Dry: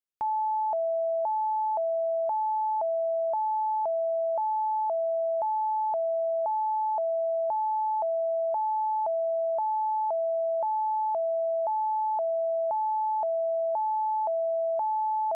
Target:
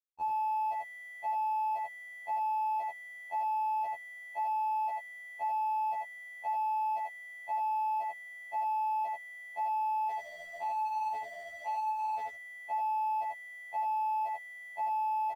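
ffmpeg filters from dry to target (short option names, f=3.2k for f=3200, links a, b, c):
-filter_complex "[0:a]tiltshelf=f=710:g=4.5,asettb=1/sr,asplit=3[a][b][c];[a]atrim=end=10.104[d];[b]atrim=start=10.1:end=12.27,asetpts=PTS-STARTPTS,afade=t=in:d=0.004:c=qsin,afade=t=out:st=2.166:d=0.004:c=qsin,flanger=delay=5.4:depth=5.9:regen=59:speed=1.4:shape=sinusoidal[e];[c]atrim=start=12.266[f];[d][e]acrossfade=d=0.004:c1=hsin:c2=qsin[g];[g][f]acrossfade=d=0.004:c1=qsin:c2=hsin,asoftclip=type=tanh:threshold=-27dB,acrusher=bits=7:mix=0:aa=0.000001,asplit=2[h][i];[i]highpass=f=720:p=1,volume=24dB,asoftclip=type=tanh:threshold=-28dB[j];[h][j]amix=inputs=2:normalize=0,lowpass=f=1k:p=1,volume=-6dB,aecho=1:1:85:0.668,afftfilt=real='re*2*eq(mod(b,4),0)':imag='im*2*eq(mod(b,4),0)':win_size=2048:overlap=0.75,volume=-1.5dB"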